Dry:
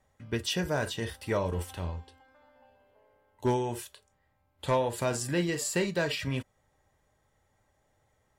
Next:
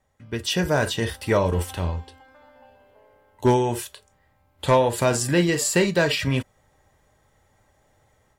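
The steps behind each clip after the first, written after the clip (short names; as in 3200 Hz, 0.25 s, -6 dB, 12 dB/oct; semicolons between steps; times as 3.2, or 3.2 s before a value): AGC gain up to 9 dB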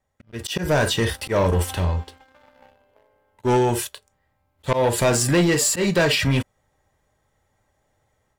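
auto swell 0.126 s; sample leveller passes 2; gain -2 dB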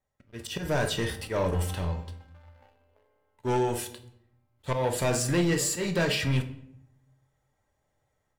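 shoebox room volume 160 m³, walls mixed, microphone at 0.37 m; gain -8.5 dB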